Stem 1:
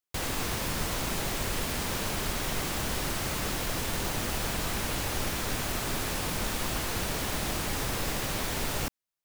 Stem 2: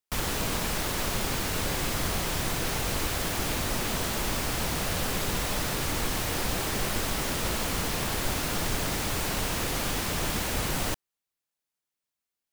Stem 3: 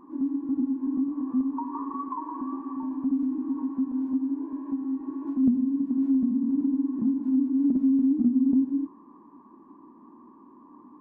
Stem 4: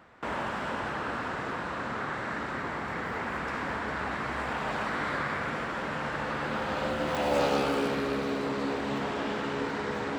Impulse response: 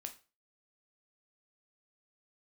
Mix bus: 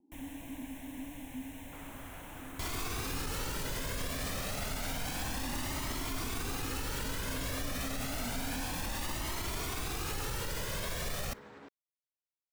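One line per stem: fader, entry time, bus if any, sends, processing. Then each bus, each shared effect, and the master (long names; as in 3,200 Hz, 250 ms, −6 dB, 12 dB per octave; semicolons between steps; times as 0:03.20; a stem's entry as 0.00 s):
+2.5 dB, 2.45 s, send −18.5 dB, flanger whose copies keep moving one way rising 0.29 Hz
−17.5 dB, 0.00 s, no send, pitch vibrato 7.2 Hz 61 cents; phaser with its sweep stopped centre 1,300 Hz, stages 6
−17.5 dB, 0.00 s, no send, Butterworth low-pass 850 Hz 96 dB per octave
−18.5 dB, 1.50 s, no send, brickwall limiter −24.5 dBFS, peak gain reduction 10 dB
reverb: on, RT60 0.35 s, pre-delay 6 ms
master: brickwall limiter −27 dBFS, peak gain reduction 10 dB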